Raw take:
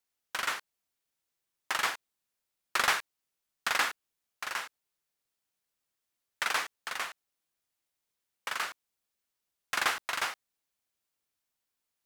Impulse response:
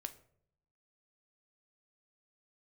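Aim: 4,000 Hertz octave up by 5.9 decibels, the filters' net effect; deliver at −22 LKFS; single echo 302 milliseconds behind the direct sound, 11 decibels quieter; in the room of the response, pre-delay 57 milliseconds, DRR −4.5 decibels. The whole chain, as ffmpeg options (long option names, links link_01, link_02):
-filter_complex "[0:a]equalizer=frequency=4000:width_type=o:gain=7.5,aecho=1:1:302:0.282,asplit=2[link_01][link_02];[1:a]atrim=start_sample=2205,adelay=57[link_03];[link_02][link_03]afir=irnorm=-1:irlink=0,volume=7.5dB[link_04];[link_01][link_04]amix=inputs=2:normalize=0,volume=3dB"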